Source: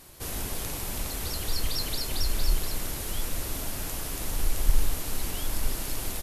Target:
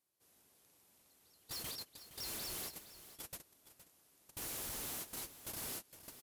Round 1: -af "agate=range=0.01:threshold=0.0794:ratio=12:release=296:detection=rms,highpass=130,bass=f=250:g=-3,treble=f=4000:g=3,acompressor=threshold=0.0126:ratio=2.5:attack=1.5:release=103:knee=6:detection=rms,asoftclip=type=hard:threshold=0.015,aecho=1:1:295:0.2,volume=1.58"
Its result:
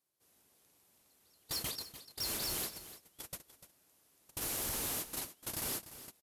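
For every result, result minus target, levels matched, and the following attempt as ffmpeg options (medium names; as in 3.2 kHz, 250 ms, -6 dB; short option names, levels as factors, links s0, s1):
echo 171 ms early; hard clipper: distortion -9 dB
-af "agate=range=0.01:threshold=0.0794:ratio=12:release=296:detection=rms,highpass=130,bass=f=250:g=-3,treble=f=4000:g=3,acompressor=threshold=0.0126:ratio=2.5:attack=1.5:release=103:knee=6:detection=rms,asoftclip=type=hard:threshold=0.015,aecho=1:1:466:0.2,volume=1.58"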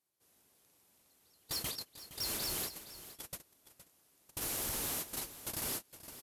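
hard clipper: distortion -9 dB
-af "agate=range=0.01:threshold=0.0794:ratio=12:release=296:detection=rms,highpass=130,bass=f=250:g=-3,treble=f=4000:g=3,acompressor=threshold=0.0126:ratio=2.5:attack=1.5:release=103:knee=6:detection=rms,asoftclip=type=hard:threshold=0.00501,aecho=1:1:466:0.2,volume=1.58"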